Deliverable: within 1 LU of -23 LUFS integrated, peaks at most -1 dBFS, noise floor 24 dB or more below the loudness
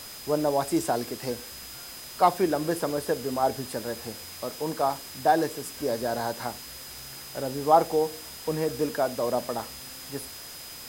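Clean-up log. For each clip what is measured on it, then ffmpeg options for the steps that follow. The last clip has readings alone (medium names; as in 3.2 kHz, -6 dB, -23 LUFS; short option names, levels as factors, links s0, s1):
steady tone 5 kHz; tone level -45 dBFS; noise floor -42 dBFS; noise floor target -52 dBFS; loudness -28.0 LUFS; peak level -7.0 dBFS; loudness target -23.0 LUFS
-> -af "bandreject=f=5000:w=30"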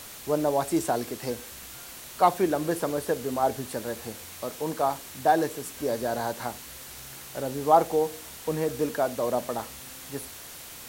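steady tone not found; noise floor -43 dBFS; noise floor target -52 dBFS
-> -af "afftdn=nr=9:nf=-43"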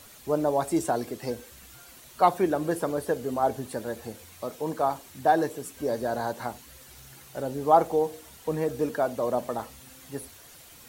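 noise floor -50 dBFS; noise floor target -52 dBFS
-> -af "afftdn=nr=6:nf=-50"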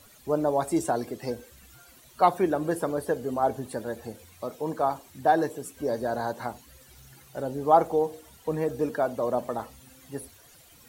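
noise floor -55 dBFS; loudness -28.0 LUFS; peak level -7.0 dBFS; loudness target -23.0 LUFS
-> -af "volume=1.78"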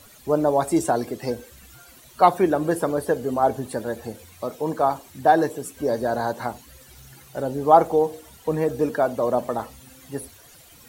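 loudness -23.0 LUFS; peak level -2.0 dBFS; noise floor -50 dBFS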